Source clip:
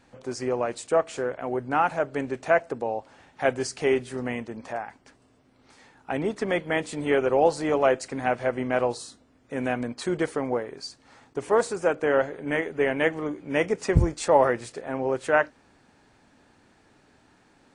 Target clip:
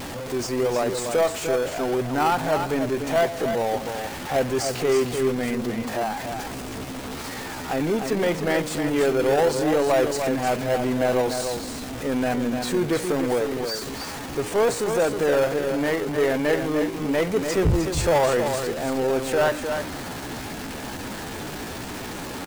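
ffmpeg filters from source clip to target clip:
-filter_complex "[0:a]aeval=exprs='val(0)+0.5*0.0316*sgn(val(0))':c=same,asplit=2[a][b];[b]acrusher=samples=18:mix=1:aa=0.000001:lfo=1:lforange=10.8:lforate=1,volume=-8dB[c];[a][c]amix=inputs=2:normalize=0,asoftclip=type=tanh:threshold=-13dB,acontrast=84,asplit=2[d][e];[e]aecho=0:1:238:0.473[f];[d][f]amix=inputs=2:normalize=0,atempo=0.79,volume=-7dB"

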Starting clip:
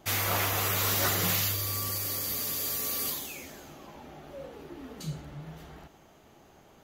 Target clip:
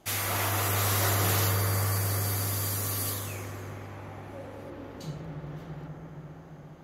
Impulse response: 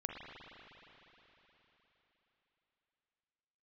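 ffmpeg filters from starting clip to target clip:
-filter_complex "[0:a]asetnsamples=n=441:p=0,asendcmd='4.7 equalizer g -7',equalizer=f=9.8k:t=o:w=0.77:g=4.5[a];[1:a]atrim=start_sample=2205,asetrate=25137,aresample=44100[b];[a][b]afir=irnorm=-1:irlink=0,volume=-2.5dB"

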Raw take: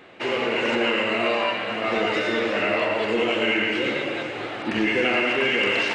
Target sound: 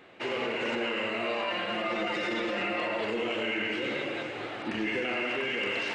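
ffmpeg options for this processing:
-filter_complex "[0:a]asettb=1/sr,asplit=3[a][b][c];[a]atrim=end=1.504[d];[b]atrim=start=1.5:end=3.01,asetpts=PTS-STARTPTS,afade=t=in:d=0.004:c=qsin,afade=t=out:st=1.506:d=0.004:c=qsin,aecho=1:1:5.7:0.94,atrim=end_sample=66591[e];[c]atrim=start=3.006[f];[d][e]acrossfade=d=0.004:c1=hsin:c2=qsin[g];[g][f]acrossfade=d=0.004:c1=qsin:c2=hsin,alimiter=limit=-16.5dB:level=0:latency=1:release=30,volume=-6dB"

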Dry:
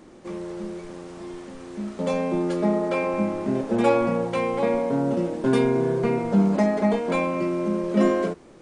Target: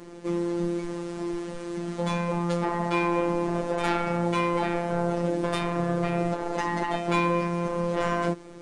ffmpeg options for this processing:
-af "aeval=exprs='(tanh(10*val(0)+0.05)-tanh(0.05))/10':c=same,afftfilt=real='re*lt(hypot(re,im),0.316)':imag='im*lt(hypot(re,im),0.316)':win_size=1024:overlap=0.75,afftfilt=real='hypot(re,im)*cos(PI*b)':imag='0':win_size=1024:overlap=0.75,volume=7dB"

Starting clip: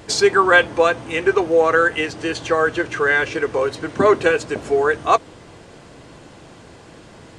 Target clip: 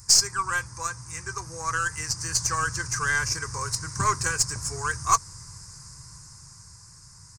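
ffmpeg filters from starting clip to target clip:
-af "firequalizer=gain_entry='entry(130,0);entry(240,-25);entry(680,-29);entry(980,-7);entry(2300,-16);entry(3200,-28);entry(5000,10)':delay=0.05:min_phase=1,dynaudnorm=f=260:g=13:m=7.5dB,aeval=exprs='0.841*(cos(1*acos(clip(val(0)/0.841,-1,1)))-cos(1*PI/2))+0.0266*(cos(5*acos(clip(val(0)/0.841,-1,1)))-cos(5*PI/2))+0.0266*(cos(7*acos(clip(val(0)/0.841,-1,1)))-cos(7*PI/2))+0.0266*(cos(8*acos(clip(val(0)/0.841,-1,1)))-cos(8*PI/2))':c=same,volume=-2.5dB"

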